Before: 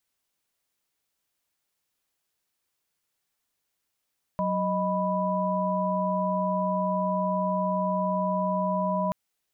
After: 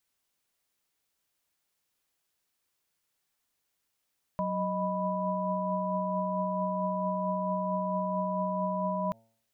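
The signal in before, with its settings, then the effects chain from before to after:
chord F#3/D#5/B5 sine, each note -28 dBFS 4.73 s
de-hum 112.8 Hz, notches 8; limiter -24 dBFS

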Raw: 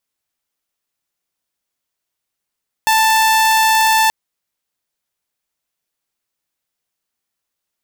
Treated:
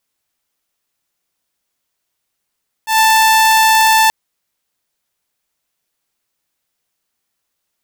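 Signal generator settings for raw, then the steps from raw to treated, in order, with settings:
tone saw 883 Hz -8 dBFS 1.23 s
auto swell 0.124 s; in parallel at -0.5 dB: limiter -17 dBFS

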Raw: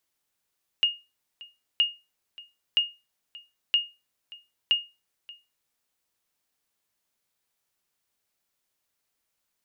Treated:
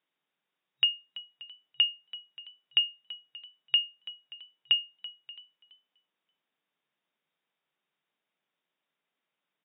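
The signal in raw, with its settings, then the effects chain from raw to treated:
sonar ping 2850 Hz, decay 0.26 s, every 0.97 s, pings 5, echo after 0.58 s, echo -22 dB -14 dBFS
FFT band-pass 130–3800 Hz; frequency-shifting echo 0.333 s, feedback 37%, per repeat +55 Hz, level -17.5 dB

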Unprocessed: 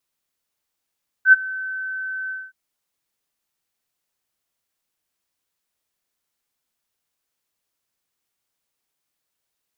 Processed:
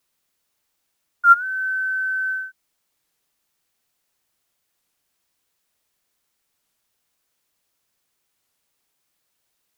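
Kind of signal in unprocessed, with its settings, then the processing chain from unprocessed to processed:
ADSR sine 1530 Hz, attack 76 ms, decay 24 ms, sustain -21 dB, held 1.05 s, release 0.221 s -4.5 dBFS
in parallel at +0.5 dB: compressor 12:1, threshold -29 dBFS; on the sum: companded quantiser 8-bit; record warp 33 1/3 rpm, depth 160 cents

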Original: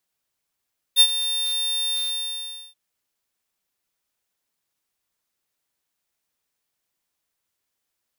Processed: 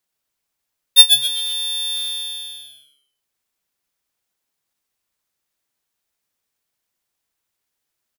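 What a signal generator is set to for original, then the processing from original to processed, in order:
ADSR square 3600 Hz, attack 46 ms, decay 61 ms, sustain -13.5 dB, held 0.98 s, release 0.801 s -11 dBFS
transient shaper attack +10 dB, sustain -3 dB; on a send: frequency-shifting echo 0.128 s, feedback 31%, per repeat -140 Hz, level -6 dB

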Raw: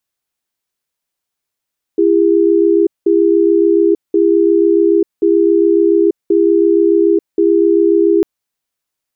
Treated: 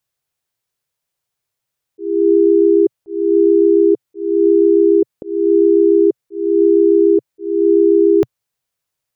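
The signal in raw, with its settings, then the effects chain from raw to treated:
cadence 336 Hz, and 403 Hz, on 0.89 s, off 0.19 s, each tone -10.5 dBFS 6.25 s
graphic EQ 125/250/500 Hz +10/-6/+3 dB; auto swell 0.319 s

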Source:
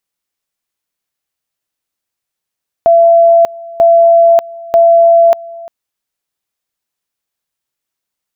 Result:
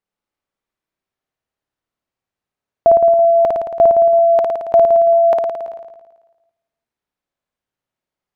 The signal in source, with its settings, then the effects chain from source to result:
two-level tone 674 Hz -3 dBFS, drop 22 dB, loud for 0.59 s, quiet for 0.35 s, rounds 3
LPF 1100 Hz 6 dB/oct; flutter echo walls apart 9.5 m, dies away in 1.2 s

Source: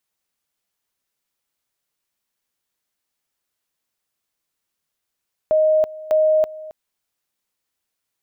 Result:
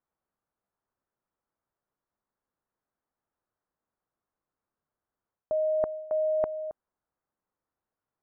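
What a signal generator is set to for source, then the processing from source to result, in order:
two-level tone 623 Hz -12.5 dBFS, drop 19 dB, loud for 0.33 s, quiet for 0.27 s, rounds 2
LPF 1400 Hz 24 dB/oct; reverse; compressor 12:1, threshold -25 dBFS; reverse

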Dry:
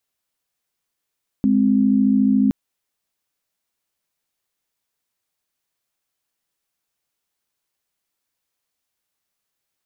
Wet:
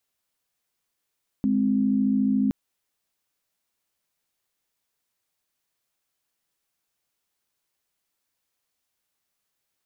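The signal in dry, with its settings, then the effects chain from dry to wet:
chord G#3/C4 sine, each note -16 dBFS 1.07 s
limiter -16.5 dBFS

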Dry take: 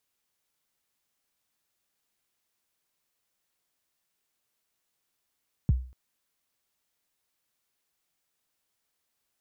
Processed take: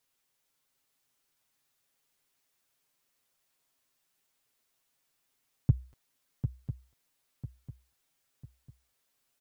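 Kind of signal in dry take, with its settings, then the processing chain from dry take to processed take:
kick drum length 0.24 s, from 180 Hz, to 63 Hz, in 24 ms, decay 0.40 s, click off, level -15.5 dB
comb 7.5 ms, depth 61%; swung echo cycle 0.998 s, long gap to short 3:1, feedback 36%, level -8 dB

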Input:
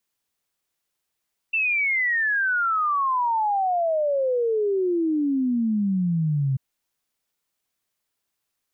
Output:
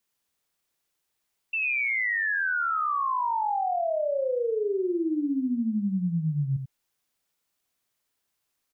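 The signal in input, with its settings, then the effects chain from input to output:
log sweep 2700 Hz -> 130 Hz 5.04 s -19.5 dBFS
limiter -24.5 dBFS; on a send: echo 88 ms -6.5 dB

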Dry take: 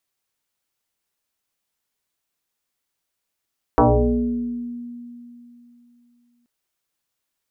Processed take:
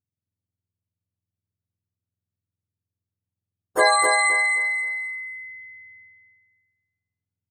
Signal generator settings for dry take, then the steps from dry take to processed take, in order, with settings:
FM tone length 2.68 s, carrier 240 Hz, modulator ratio 0.75, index 5.4, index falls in 1.35 s exponential, decay 3.08 s, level -10 dB
spectrum mirrored in octaves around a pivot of 700 Hz; gate -58 dBFS, range -14 dB; feedback echo 0.262 s, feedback 30%, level -5 dB

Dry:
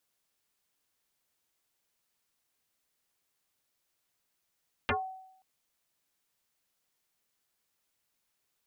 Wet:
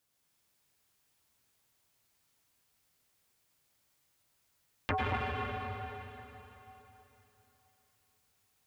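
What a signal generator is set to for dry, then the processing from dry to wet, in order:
FM tone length 0.53 s, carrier 756 Hz, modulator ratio 0.44, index 8.7, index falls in 0.18 s exponential, decay 0.77 s, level -23.5 dB
bell 100 Hz +9 dB 1.4 oct; plate-style reverb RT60 3.5 s, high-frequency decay 0.95×, pre-delay 85 ms, DRR -3.5 dB; core saturation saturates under 450 Hz

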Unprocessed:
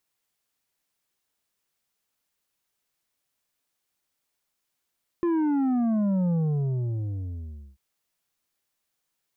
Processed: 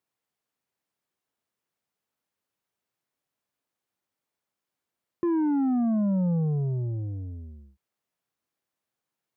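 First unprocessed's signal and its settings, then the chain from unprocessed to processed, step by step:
sub drop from 350 Hz, over 2.54 s, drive 7 dB, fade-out 1.45 s, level -22 dB
HPF 89 Hz; high shelf 2100 Hz -10.5 dB

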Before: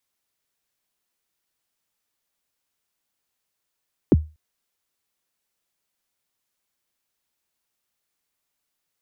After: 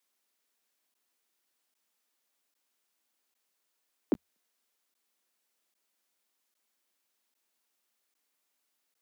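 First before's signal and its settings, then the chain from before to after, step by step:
kick drum length 0.24 s, from 430 Hz, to 77 Hz, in 31 ms, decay 0.28 s, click off, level -7 dB
steep high-pass 200 Hz 48 dB/oct; limiter -19 dBFS; crackling interface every 0.80 s, samples 512, zero, from 0.94

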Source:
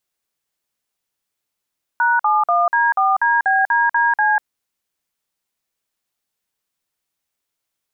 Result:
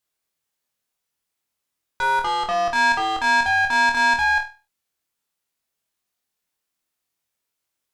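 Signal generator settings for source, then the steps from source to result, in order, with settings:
DTMF "#71D4DBDDC", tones 0.194 s, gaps 49 ms, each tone -15.5 dBFS
tube stage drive 21 dB, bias 0.55; on a send: flutter echo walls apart 4.2 m, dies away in 0.31 s

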